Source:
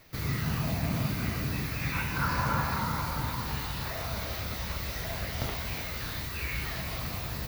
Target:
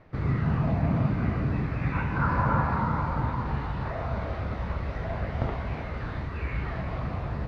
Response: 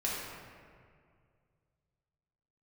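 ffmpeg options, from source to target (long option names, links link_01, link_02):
-af "lowpass=1300,volume=5.5dB"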